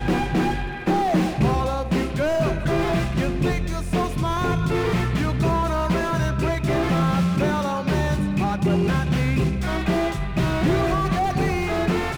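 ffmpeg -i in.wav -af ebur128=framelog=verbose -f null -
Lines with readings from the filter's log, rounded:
Integrated loudness:
  I:         -22.4 LUFS
  Threshold: -32.4 LUFS
Loudness range:
  LRA:         1.1 LU
  Threshold: -42.4 LUFS
  LRA low:   -23.0 LUFS
  LRA high:  -22.0 LUFS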